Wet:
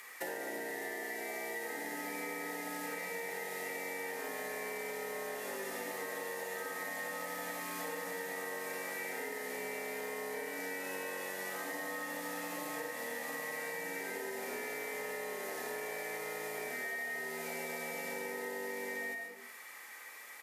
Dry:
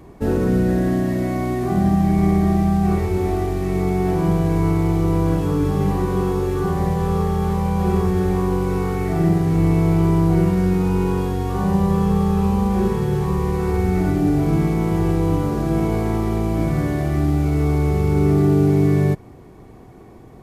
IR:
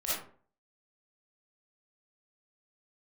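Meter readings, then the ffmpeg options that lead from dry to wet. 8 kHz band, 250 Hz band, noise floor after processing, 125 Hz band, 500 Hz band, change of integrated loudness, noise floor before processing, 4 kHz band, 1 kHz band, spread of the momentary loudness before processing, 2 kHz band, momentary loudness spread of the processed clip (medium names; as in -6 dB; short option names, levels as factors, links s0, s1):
-2.5 dB, -30.5 dB, -50 dBFS, under -40 dB, -18.0 dB, -20.5 dB, -42 dBFS, -7.0 dB, -16.5 dB, 5 LU, -2.0 dB, 1 LU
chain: -filter_complex "[0:a]aecho=1:1:33|58:0.299|0.299,afreqshift=96,afwtdn=0.158,highpass=1300,equalizer=f=1900:w=2.4:g=14.5,asplit=2[s0][s1];[1:a]atrim=start_sample=2205,adelay=58[s2];[s1][s2]afir=irnorm=-1:irlink=0,volume=0.211[s3];[s0][s3]amix=inputs=2:normalize=0,crystalizer=i=5.5:c=0,acompressor=threshold=0.00398:ratio=10,asoftclip=type=tanh:threshold=0.0106,volume=3.55"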